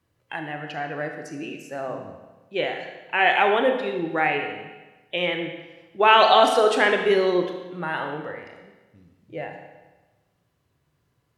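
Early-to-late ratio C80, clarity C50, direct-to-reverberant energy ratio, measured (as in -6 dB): 7.5 dB, 5.5 dB, 4.0 dB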